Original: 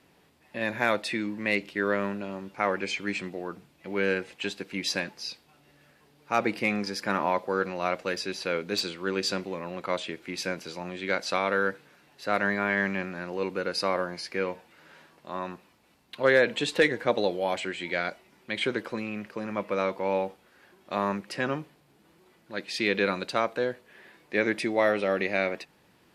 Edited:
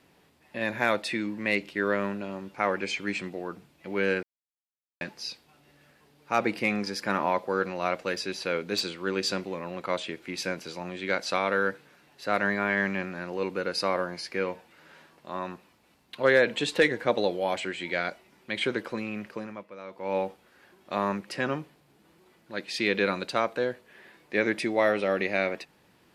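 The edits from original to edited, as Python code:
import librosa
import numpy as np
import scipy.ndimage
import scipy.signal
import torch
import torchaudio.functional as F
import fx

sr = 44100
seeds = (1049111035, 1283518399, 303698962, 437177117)

y = fx.edit(x, sr, fx.silence(start_s=4.23, length_s=0.78),
    fx.fade_down_up(start_s=19.35, length_s=0.83, db=-16.0, fade_s=0.4, curve='qua'), tone=tone)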